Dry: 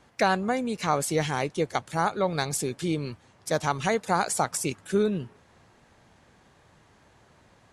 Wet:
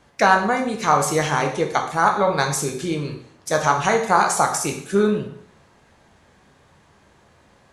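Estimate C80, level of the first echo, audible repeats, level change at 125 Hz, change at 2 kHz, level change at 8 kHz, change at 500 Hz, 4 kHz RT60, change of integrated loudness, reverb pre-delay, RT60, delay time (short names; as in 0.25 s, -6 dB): 11.0 dB, none, none, +4.0 dB, +9.0 dB, +6.0 dB, +6.0 dB, 0.60 s, +7.5 dB, 6 ms, 0.60 s, none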